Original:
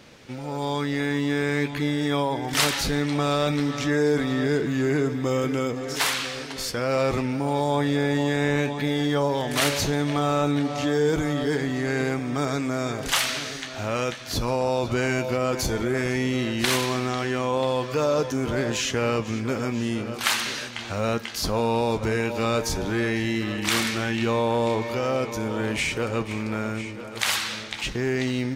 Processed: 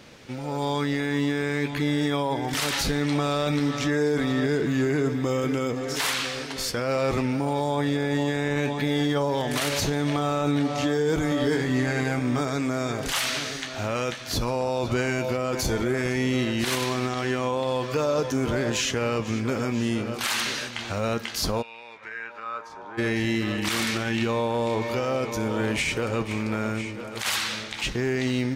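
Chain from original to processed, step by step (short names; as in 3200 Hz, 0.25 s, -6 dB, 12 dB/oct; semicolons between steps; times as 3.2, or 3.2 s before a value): limiter -16.5 dBFS, peak gain reduction 11.5 dB; 11.29–12.41 doubler 24 ms -4.5 dB; 21.61–22.97 band-pass 2600 Hz -> 910 Hz, Q 3.3; gain +1 dB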